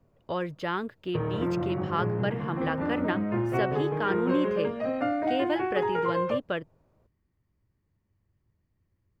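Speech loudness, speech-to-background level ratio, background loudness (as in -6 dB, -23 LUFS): -33.0 LUFS, -3.5 dB, -29.5 LUFS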